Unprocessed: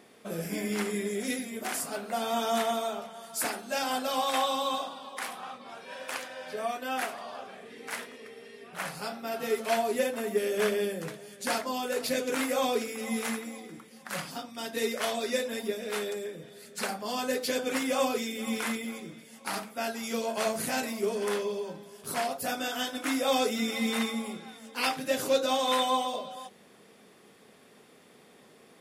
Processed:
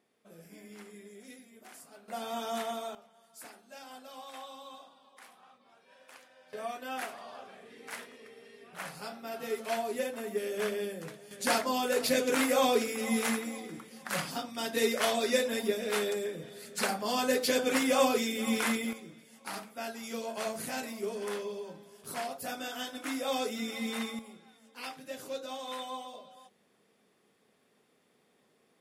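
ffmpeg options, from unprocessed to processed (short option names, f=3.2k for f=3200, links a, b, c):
-af "asetnsamples=n=441:p=0,asendcmd='2.08 volume volume -7dB;2.95 volume volume -18dB;6.53 volume volume -5.5dB;11.31 volume volume 2dB;18.93 volume volume -6dB;24.19 volume volume -13dB',volume=-18.5dB"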